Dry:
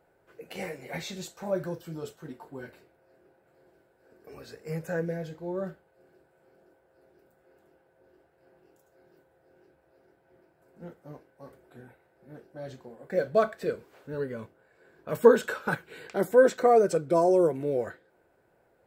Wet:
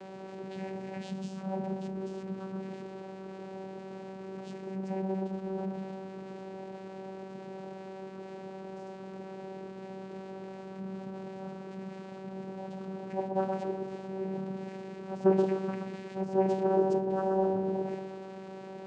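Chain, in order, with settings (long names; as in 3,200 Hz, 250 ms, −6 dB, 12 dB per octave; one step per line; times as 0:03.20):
converter with a step at zero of −28.5 dBFS
notch filter 1,500 Hz, Q 6.5
bucket-brigade delay 125 ms, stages 1,024, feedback 54%, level −4 dB
on a send at −13 dB: convolution reverb RT60 0.55 s, pre-delay 4 ms
on the sum: channel vocoder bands 8, saw 191 Hz
level −8.5 dB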